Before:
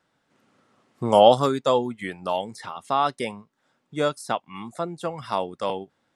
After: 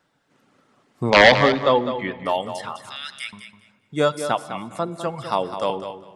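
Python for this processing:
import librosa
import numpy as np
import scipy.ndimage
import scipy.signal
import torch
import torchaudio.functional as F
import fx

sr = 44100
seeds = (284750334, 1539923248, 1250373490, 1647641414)

y = (np.mod(10.0 ** (6.0 / 20.0) * x + 1.0, 2.0) - 1.0) / 10.0 ** (6.0 / 20.0)
y = fx.lowpass(y, sr, hz=4300.0, slope=24, at=(1.1, 2.26))
y = fx.dereverb_blind(y, sr, rt60_s=0.51)
y = fx.ellip_highpass(y, sr, hz=1600.0, order=4, stop_db=40, at=(2.76, 3.33))
y = fx.echo_feedback(y, sr, ms=204, feedback_pct=18, wet_db=-10)
y = fx.room_shoebox(y, sr, seeds[0], volume_m3=2300.0, walls='mixed', distance_m=0.35)
y = y * 10.0 ** (3.5 / 20.0)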